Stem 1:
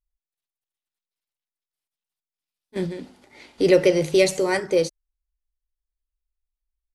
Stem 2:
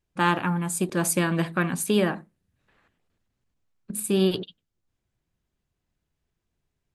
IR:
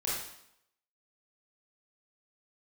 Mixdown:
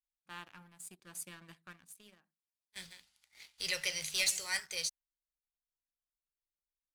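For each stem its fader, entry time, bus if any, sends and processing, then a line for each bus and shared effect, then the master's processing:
-0.5 dB, 0.00 s, no send, amplifier tone stack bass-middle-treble 10-0-10
-19.0 dB, 0.10 s, no send, auto duck -15 dB, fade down 1.10 s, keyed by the first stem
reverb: none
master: amplifier tone stack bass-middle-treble 5-5-5; waveshaping leveller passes 2

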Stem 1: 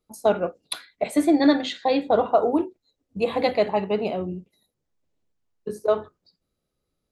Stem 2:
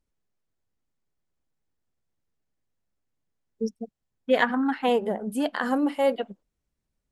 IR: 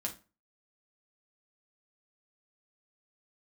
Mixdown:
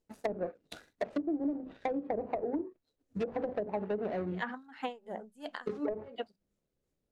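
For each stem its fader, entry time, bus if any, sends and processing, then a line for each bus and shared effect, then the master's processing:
+1.0 dB, 0.00 s, no send, median filter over 41 samples; tone controls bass -1 dB, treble +4 dB
-4.5 dB, 0.00 s, no send, peaking EQ 6.9 kHz +7 dB 0.38 oct; hum notches 50/100/150/200 Hz; logarithmic tremolo 2.9 Hz, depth 27 dB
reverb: none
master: low-pass that closes with the level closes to 450 Hz, closed at -18 dBFS; bass shelf 420 Hz -4.5 dB; compression 5:1, threshold -31 dBFS, peak gain reduction 13 dB

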